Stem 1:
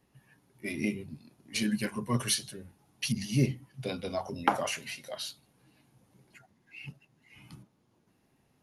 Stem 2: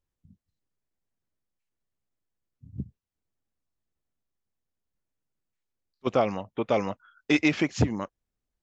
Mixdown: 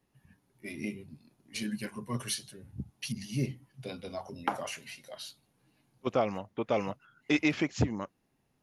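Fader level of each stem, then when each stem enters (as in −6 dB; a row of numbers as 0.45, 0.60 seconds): −5.5, −4.5 decibels; 0.00, 0.00 seconds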